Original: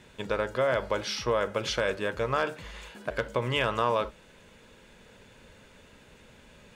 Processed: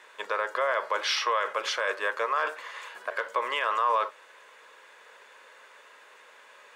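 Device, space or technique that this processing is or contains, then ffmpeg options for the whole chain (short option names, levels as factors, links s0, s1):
laptop speaker: -filter_complex "[0:a]asettb=1/sr,asplit=3[s0][s1][s2];[s0]atrim=end=1.034[s3];[s1]atrim=start=1.03:end=1.53,asetpts=PTS-STARTPTS,afade=t=in:d=0.004:c=qsin,afade=t=out:st=0.496:d=0.004:c=qsin,equalizer=f=3000:t=o:w=1.6:g=7[s4];[s2]atrim=start=1.526[s5];[s3][s4]acrossfade=d=0.004:c1=hsin:c2=qsin[s6];[s6][s5]acrossfade=d=0.004:c1=qsin:c2=hsin,highpass=f=450:w=0.5412,highpass=f=450:w=1.3066,equalizer=f=1100:t=o:w=0.45:g=11,equalizer=f=1800:t=o:w=0.57:g=7,alimiter=limit=0.15:level=0:latency=1:release=20"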